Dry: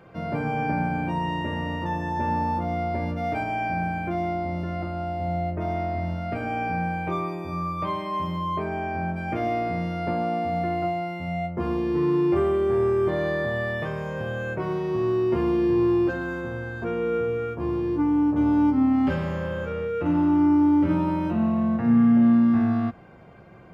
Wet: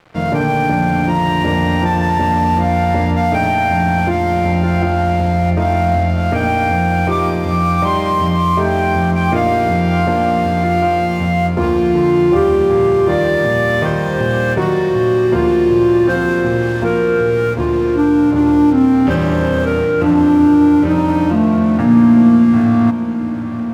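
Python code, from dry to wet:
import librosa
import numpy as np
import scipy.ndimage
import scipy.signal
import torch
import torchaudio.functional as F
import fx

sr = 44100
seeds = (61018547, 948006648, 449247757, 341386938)

p1 = fx.over_compress(x, sr, threshold_db=-29.0, ratio=-1.0)
p2 = x + F.gain(torch.from_numpy(p1), -3.0).numpy()
p3 = np.sign(p2) * np.maximum(np.abs(p2) - 10.0 ** (-40.5 / 20.0), 0.0)
p4 = fx.echo_diffused(p3, sr, ms=824, feedback_pct=63, wet_db=-11.5)
y = F.gain(torch.from_numpy(p4), 8.0).numpy()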